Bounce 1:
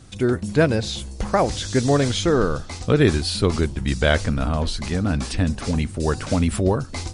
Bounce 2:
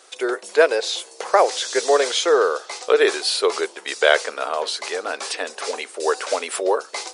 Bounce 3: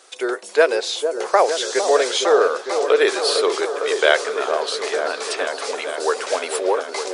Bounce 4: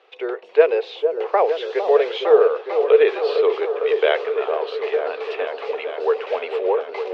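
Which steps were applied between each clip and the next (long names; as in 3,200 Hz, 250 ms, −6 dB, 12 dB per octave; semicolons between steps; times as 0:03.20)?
elliptic high-pass filter 420 Hz, stop band 70 dB; level +5 dB
echo whose low-pass opens from repeat to repeat 455 ms, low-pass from 750 Hz, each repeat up 1 octave, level −6 dB
loudspeaker in its box 360–3,100 Hz, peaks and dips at 450 Hz +10 dB, 800 Hz +3 dB, 1,500 Hz −5 dB, 2,700 Hz +5 dB; level −4.5 dB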